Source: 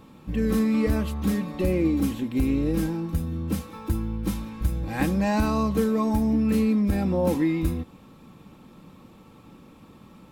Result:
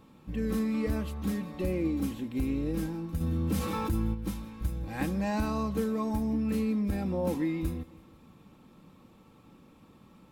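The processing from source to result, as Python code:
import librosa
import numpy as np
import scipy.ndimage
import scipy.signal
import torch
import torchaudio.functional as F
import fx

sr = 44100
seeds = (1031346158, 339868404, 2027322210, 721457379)

p1 = x + fx.echo_feedback(x, sr, ms=162, feedback_pct=55, wet_db=-22.5, dry=0)
p2 = fx.env_flatten(p1, sr, amount_pct=70, at=(3.2, 4.13), fade=0.02)
y = p2 * 10.0 ** (-7.0 / 20.0)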